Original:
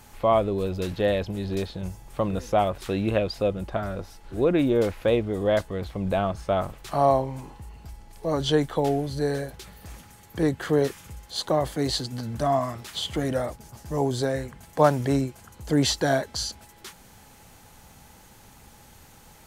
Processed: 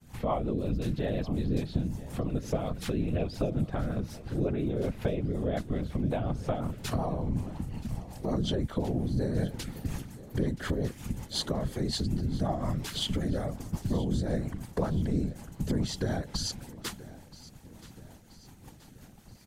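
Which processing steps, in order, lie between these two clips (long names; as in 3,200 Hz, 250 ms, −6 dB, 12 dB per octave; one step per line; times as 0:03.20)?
downward expander −42 dBFS
parametric band 130 Hz +12.5 dB 1.3 octaves
in parallel at −1.5 dB: brickwall limiter −19 dBFS, peak gain reduction 17 dB
on the sum: downward compressor 6 to 1, threshold −26 dBFS, peak gain reduction 17 dB
random phases in short frames
rotating-speaker cabinet horn 5.5 Hz
on a send: repeating echo 977 ms, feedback 49%, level −18.5 dB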